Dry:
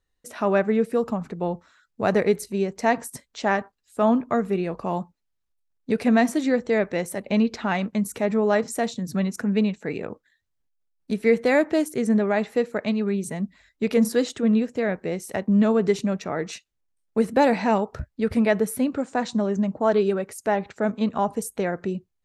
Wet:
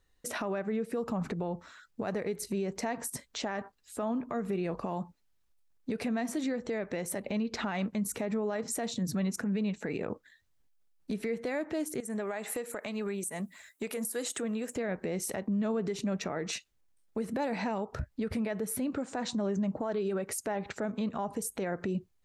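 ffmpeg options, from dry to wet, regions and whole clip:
ffmpeg -i in.wav -filter_complex "[0:a]asettb=1/sr,asplit=3[link_01][link_02][link_03];[link_01]atrim=end=12.004[link_04];[link_02]atrim=start=12:end=14.76,asetpts=PTS-STARTPTS,afade=type=in:duration=0.004:curve=qsin,afade=type=out:start_time=2.756:duration=0.004:curve=qsin,highpass=frequency=650:poles=1,highshelf=frequency=7000:width_type=q:width=1.5:gain=12.5,acompressor=threshold=-37dB:ratio=5:attack=3.2:release=140:knee=1:detection=peak[link_05];[link_03]atrim=start=14.756[link_06];[link_04][link_05]acrossfade=duration=0.004:curve1=hsin:curve2=qsin[link_07];[link_07][link_06]acrossfade=duration=0.004:curve1=qsin:curve2=hsin,acompressor=threshold=-28dB:ratio=6,alimiter=level_in=6.5dB:limit=-24dB:level=0:latency=1:release=124,volume=-6.5dB,volume=5.5dB" out.wav

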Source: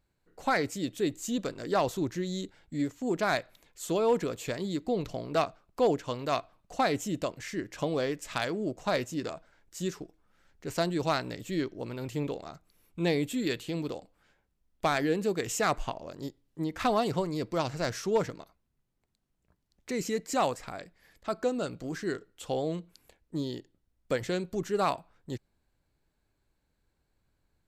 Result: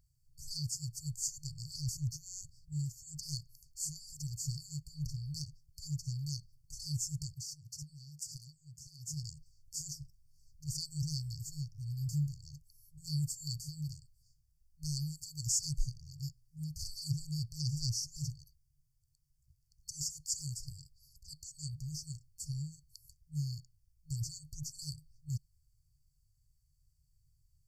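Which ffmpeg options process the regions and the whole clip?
ffmpeg -i in.wav -filter_complex "[0:a]asettb=1/sr,asplit=3[link_01][link_02][link_03];[link_01]atrim=end=7.354[link_04];[link_02]atrim=start=7.35:end=9.14,asetpts=PTS-STARTPTS,afade=type=in:duration=0.004:curve=qsin,afade=type=out:start_time=1.786:duration=0.004:curve=qsin,highpass=110,acompressor=threshold=-38dB:ratio=12:attack=3.2:release=140:knee=1:detection=peak[link_05];[link_03]atrim=start=9.136[link_06];[link_04][link_05]acrossfade=duration=0.004:curve1=hsin:curve2=qsin[link_07];[link_07][link_06]acrossfade=duration=0.004:curve1=qsin:curve2=hsin,acrossover=split=9500[link_08][link_09];[link_09]acompressor=threshold=-59dB:ratio=4:attack=1:release=60[link_10];[link_08][link_10]amix=inputs=2:normalize=0,afftfilt=real='re*(1-between(b*sr/4096,160,4400))':imag='im*(1-between(b*sr/4096,160,4400))':win_size=4096:overlap=0.75,volume=5dB" out.wav

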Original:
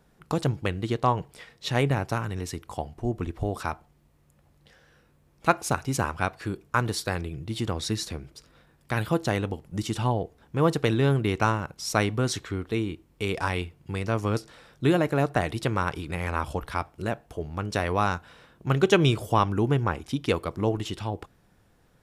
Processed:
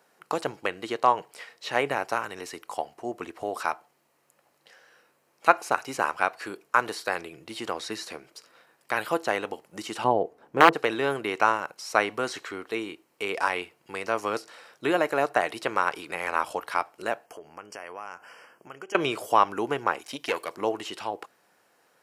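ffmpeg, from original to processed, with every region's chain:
ffmpeg -i in.wav -filter_complex "[0:a]asettb=1/sr,asplit=3[link_01][link_02][link_03];[link_01]atrim=end=10.044[link_04];[link_02]atrim=start=10.04:end=10.75,asetpts=PTS-STARTPTS,afade=type=in:duration=0.004:curve=qsin,afade=type=out:start_time=0.706:duration=0.004:curve=qsin,tiltshelf=frequency=1100:gain=8.5,aeval=exprs='(mod(2.24*val(0)+1,2)-1)/2.24':channel_layout=same[link_05];[link_03]atrim=start=10.746[link_06];[link_04][link_05]acrossfade=duration=0.004:curve1=hsin:curve2=qsin[link_07];[link_07][link_06]acrossfade=duration=0.004:curve1=qsin:curve2=hsin,asettb=1/sr,asplit=3[link_08][link_09][link_10];[link_08]atrim=end=17.264[link_11];[link_09]atrim=start=17.26:end=18.95,asetpts=PTS-STARTPTS,afade=type=in:duration=0.004:curve=qsin,afade=type=out:start_time=1.686:duration=0.004:curve=qsin,acompressor=threshold=-36dB:ratio=8:attack=3.2:release=140:knee=1:detection=peak,asuperstop=centerf=3800:order=20:qfactor=3.1[link_12];[link_10]atrim=start=18.946[link_13];[link_11][link_12]acrossfade=duration=0.004:curve1=hsin:curve2=qsin[link_14];[link_14][link_13]acrossfade=duration=0.004:curve1=qsin:curve2=hsin,asettb=1/sr,asplit=3[link_15][link_16][link_17];[link_15]atrim=end=19.994[link_18];[link_16]atrim=start=19.99:end=20.55,asetpts=PTS-STARTPTS,afade=type=in:duration=0.004:curve=qsin,afade=type=out:start_time=0.556:duration=0.004:curve=qsin,highshelf=frequency=2100:gain=9,bandreject=frequency=1300:width=7.7,aeval=exprs='(tanh(7.08*val(0)+0.6)-tanh(0.6))/7.08':channel_layout=same[link_19];[link_17]atrim=start=20.546[link_20];[link_18][link_19]acrossfade=duration=0.004:curve1=hsin:curve2=qsin[link_21];[link_21][link_20]acrossfade=duration=0.004:curve1=qsin:curve2=hsin,highpass=520,bandreject=frequency=3500:width=10,acrossover=split=2900[link_22][link_23];[link_23]acompressor=threshold=-42dB:ratio=4:attack=1:release=60[link_24];[link_22][link_24]amix=inputs=2:normalize=0,volume=4dB" out.wav

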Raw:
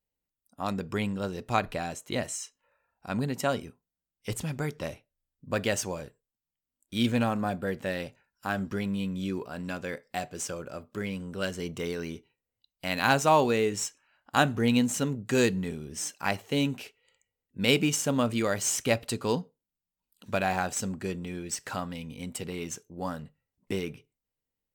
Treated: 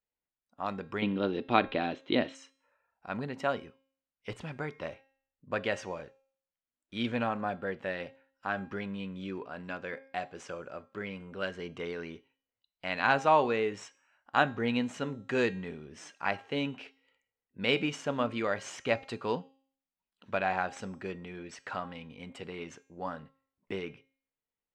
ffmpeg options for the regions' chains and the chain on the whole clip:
ffmpeg -i in.wav -filter_complex "[0:a]asettb=1/sr,asplit=3[link_01][link_02][link_03];[link_01]atrim=end=1.024[link_04];[link_02]atrim=start=1.02:end=2.35,asetpts=PTS-STARTPTS,afade=type=in:duration=0.004:curve=qsin,afade=type=out:start_time=1.326:duration=0.004:curve=qsin,lowpass=frequency=3600:width_type=q:width=3.9,equalizer=frequency=290:width=1.2:gain=14.5[link_05];[link_03]atrim=start=2.346[link_06];[link_04][link_05]acrossfade=duration=0.004:curve1=hsin:curve2=qsin[link_07];[link_07][link_06]acrossfade=duration=0.004:curve1=qsin:curve2=hsin,lowpass=2600,lowshelf=frequency=310:gain=-11,bandreject=frequency=268.9:width_type=h:width=4,bandreject=frequency=537.8:width_type=h:width=4,bandreject=frequency=806.7:width_type=h:width=4,bandreject=frequency=1075.6:width_type=h:width=4,bandreject=frequency=1344.5:width_type=h:width=4,bandreject=frequency=1613.4:width_type=h:width=4,bandreject=frequency=1882.3:width_type=h:width=4,bandreject=frequency=2151.2:width_type=h:width=4,bandreject=frequency=2420.1:width_type=h:width=4,bandreject=frequency=2689:width_type=h:width=4,bandreject=frequency=2957.9:width_type=h:width=4,bandreject=frequency=3226.8:width_type=h:width=4,bandreject=frequency=3495.7:width_type=h:width=4,bandreject=frequency=3764.6:width_type=h:width=4,bandreject=frequency=4033.5:width_type=h:width=4,bandreject=frequency=4302.4:width_type=h:width=4,bandreject=frequency=4571.3:width_type=h:width=4,bandreject=frequency=4840.2:width_type=h:width=4,bandreject=frequency=5109.1:width_type=h:width=4,bandreject=frequency=5378:width_type=h:width=4,bandreject=frequency=5646.9:width_type=h:width=4,bandreject=frequency=5915.8:width_type=h:width=4,bandreject=frequency=6184.7:width_type=h:width=4,bandreject=frequency=6453.6:width_type=h:width=4,bandreject=frequency=6722.5:width_type=h:width=4,bandreject=frequency=6991.4:width_type=h:width=4,bandreject=frequency=7260.3:width_type=h:width=4,bandreject=frequency=7529.2:width_type=h:width=4,bandreject=frequency=7798.1:width_type=h:width=4,bandreject=frequency=8067:width_type=h:width=4,bandreject=frequency=8335.9:width_type=h:width=4,bandreject=frequency=8604.8:width_type=h:width=4,bandreject=frequency=8873.7:width_type=h:width=4,bandreject=frequency=9142.6:width_type=h:width=4,bandreject=frequency=9411.5:width_type=h:width=4,bandreject=frequency=9680.4:width_type=h:width=4" out.wav

